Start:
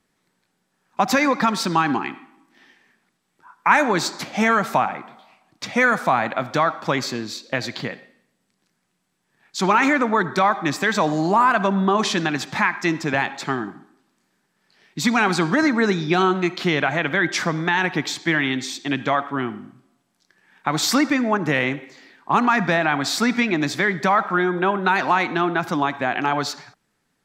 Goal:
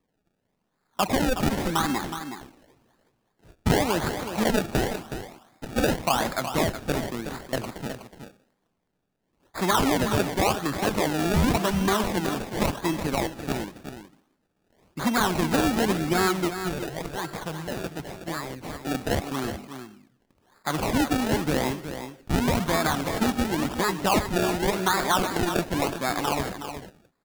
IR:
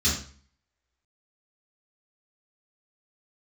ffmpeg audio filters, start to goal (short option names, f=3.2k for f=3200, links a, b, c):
-filter_complex "[0:a]asettb=1/sr,asplit=3[a][b][c];[a]atrim=end=16.504[d];[b]atrim=start=16.5:end=18.66,asetpts=PTS-STARTPTS,afade=t=in:d=0.004:c=qsin,afade=t=out:st=2.156:d=0.004:c=qsin,equalizer=f=250:t=o:w=1:g=-12,equalizer=f=1k:t=o:w=1:g=-8,equalizer=f=2k:t=o:w=1:g=-3,equalizer=f=4k:t=o:w=1:g=-10[e];[c]atrim=start=18.656[f];[d][e]acrossfade=d=0.004:c1=hsin:c2=qsin[g];[g][f]acrossfade=d=0.004:c1=qsin:c2=hsin,acrusher=samples=29:mix=1:aa=0.000001:lfo=1:lforange=29:lforate=0.91,aecho=1:1:369:0.335,volume=-5dB"